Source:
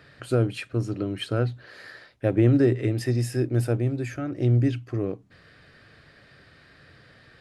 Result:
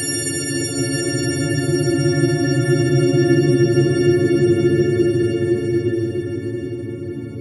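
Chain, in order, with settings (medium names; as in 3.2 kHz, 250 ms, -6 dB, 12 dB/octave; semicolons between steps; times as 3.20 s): partials quantised in pitch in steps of 4 st; Paulstretch 46×, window 0.10 s, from 3.33 s; trim +7 dB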